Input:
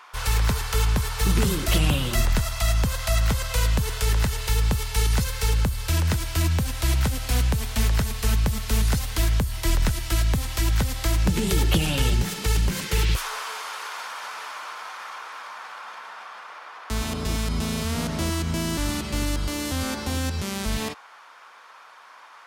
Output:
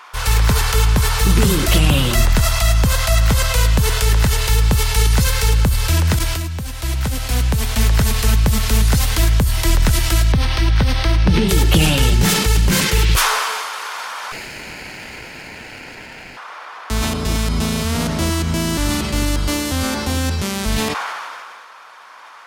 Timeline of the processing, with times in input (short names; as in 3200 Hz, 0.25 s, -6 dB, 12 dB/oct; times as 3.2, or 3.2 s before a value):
6.19–7.92 fade in, from -16 dB
10.32–11.49 polynomial smoothing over 15 samples
14.32–16.37 minimum comb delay 0.43 ms
whole clip: sustainer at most 26 dB/s; gain +6.5 dB